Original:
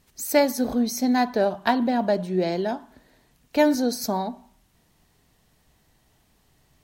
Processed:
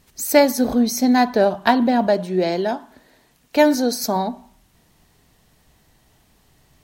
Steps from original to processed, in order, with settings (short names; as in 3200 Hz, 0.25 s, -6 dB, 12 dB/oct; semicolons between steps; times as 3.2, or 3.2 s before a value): 2.07–4.16 low shelf 160 Hz -9 dB; gain +5.5 dB